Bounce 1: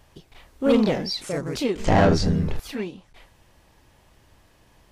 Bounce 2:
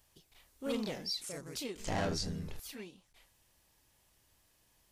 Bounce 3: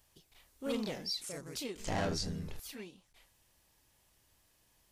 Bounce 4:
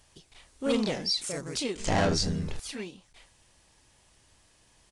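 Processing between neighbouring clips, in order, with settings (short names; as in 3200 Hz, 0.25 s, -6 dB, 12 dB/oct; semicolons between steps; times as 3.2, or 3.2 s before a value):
pre-emphasis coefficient 0.8; gain -4 dB
nothing audible
downsampling 22050 Hz; gain +9 dB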